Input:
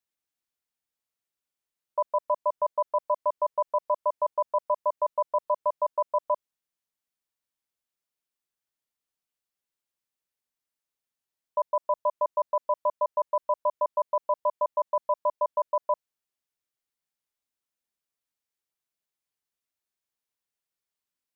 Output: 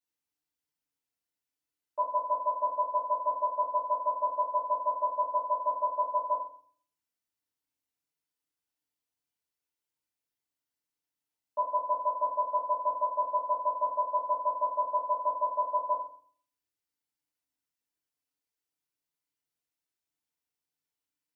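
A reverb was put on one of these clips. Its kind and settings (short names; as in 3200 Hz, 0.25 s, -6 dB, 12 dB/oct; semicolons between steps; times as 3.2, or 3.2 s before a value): FDN reverb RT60 0.5 s, low-frequency decay 1.5×, high-frequency decay 1×, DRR -8.5 dB; gain -11 dB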